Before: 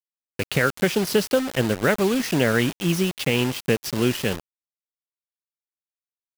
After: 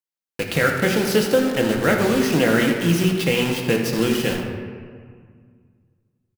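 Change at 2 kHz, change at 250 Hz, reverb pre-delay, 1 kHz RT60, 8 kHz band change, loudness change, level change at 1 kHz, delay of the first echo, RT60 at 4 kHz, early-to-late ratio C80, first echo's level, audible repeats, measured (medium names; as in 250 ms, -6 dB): +3.0 dB, +3.5 dB, 4 ms, 1.9 s, +1.5 dB, +2.5 dB, +3.0 dB, 81 ms, 1.1 s, 4.5 dB, -11.5 dB, 1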